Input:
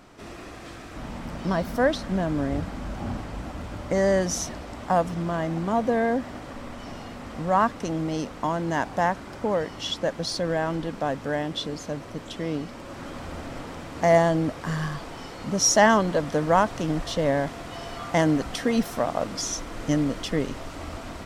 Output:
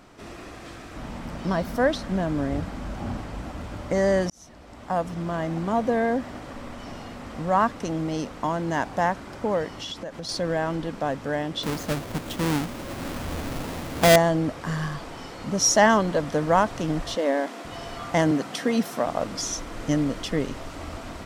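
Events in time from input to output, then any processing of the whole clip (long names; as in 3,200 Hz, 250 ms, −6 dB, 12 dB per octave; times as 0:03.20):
0:04.30–0:05.79: fade in equal-power
0:09.68–0:10.29: downward compressor 10 to 1, threshold −30 dBFS
0:11.63–0:14.16: each half-wave held at its own peak
0:17.16–0:17.65: linear-phase brick-wall high-pass 190 Hz
0:18.31–0:19.06: high-pass filter 140 Hz 24 dB per octave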